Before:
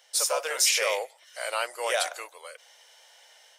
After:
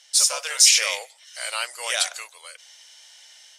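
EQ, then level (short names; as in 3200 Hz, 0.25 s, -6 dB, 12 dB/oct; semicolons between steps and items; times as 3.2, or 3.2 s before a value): LPF 6400 Hz 12 dB/oct; tilt +5.5 dB/oct; -2.5 dB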